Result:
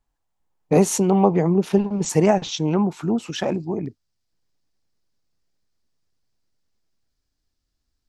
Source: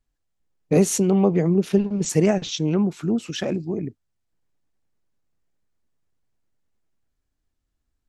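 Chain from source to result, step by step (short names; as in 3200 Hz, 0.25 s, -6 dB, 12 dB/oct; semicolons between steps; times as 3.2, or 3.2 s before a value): bell 890 Hz +11.5 dB 0.76 oct, from 3.86 s 4900 Hz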